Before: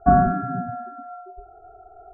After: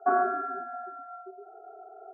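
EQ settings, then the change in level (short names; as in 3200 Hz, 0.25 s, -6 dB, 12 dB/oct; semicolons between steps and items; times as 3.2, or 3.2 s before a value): elliptic high-pass 380 Hz, stop band 70 dB; LPF 1100 Hz 6 dB/oct; notch 710 Hz, Q 20; +3.5 dB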